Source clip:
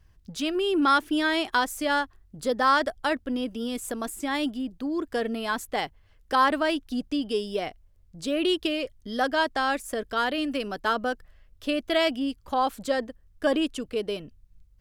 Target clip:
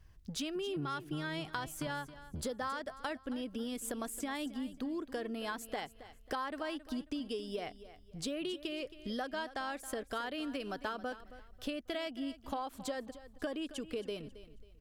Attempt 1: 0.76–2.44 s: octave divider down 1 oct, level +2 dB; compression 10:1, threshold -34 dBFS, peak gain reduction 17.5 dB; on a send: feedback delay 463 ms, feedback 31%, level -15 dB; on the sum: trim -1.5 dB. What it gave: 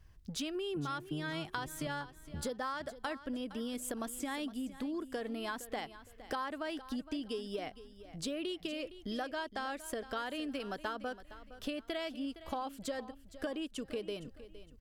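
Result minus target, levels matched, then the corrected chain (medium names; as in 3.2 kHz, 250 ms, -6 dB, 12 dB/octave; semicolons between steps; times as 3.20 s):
echo 192 ms late
0.76–2.44 s: octave divider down 1 oct, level +2 dB; compression 10:1, threshold -34 dBFS, peak gain reduction 17.5 dB; on a send: feedback delay 271 ms, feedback 31%, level -15 dB; on the sum: trim -1.5 dB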